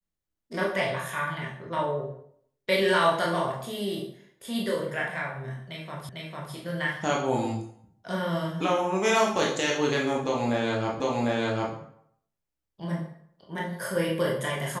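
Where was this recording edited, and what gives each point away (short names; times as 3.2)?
6.09 repeat of the last 0.45 s
11 repeat of the last 0.75 s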